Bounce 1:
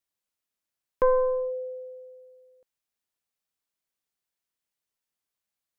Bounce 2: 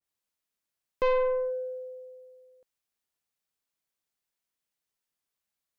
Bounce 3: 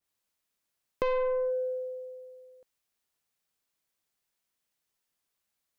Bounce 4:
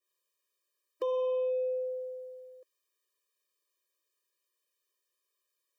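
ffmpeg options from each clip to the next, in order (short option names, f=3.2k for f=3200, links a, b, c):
-af "asoftclip=type=tanh:threshold=-20.5dB,adynamicequalizer=threshold=0.00708:dfrequency=1900:dqfactor=0.7:tfrequency=1900:tqfactor=0.7:attack=5:release=100:ratio=0.375:range=3.5:mode=boostabove:tftype=highshelf"
-af "acompressor=threshold=-31dB:ratio=6,volume=4dB"
-filter_complex "[0:a]acrossover=split=300[a][b];[b]asoftclip=type=tanh:threshold=-32.5dB[c];[a][c]amix=inputs=2:normalize=0,afftfilt=real='re*eq(mod(floor(b*sr/1024/320),2),1)':imag='im*eq(mod(floor(b*sr/1024/320),2),1)':win_size=1024:overlap=0.75,volume=3dB"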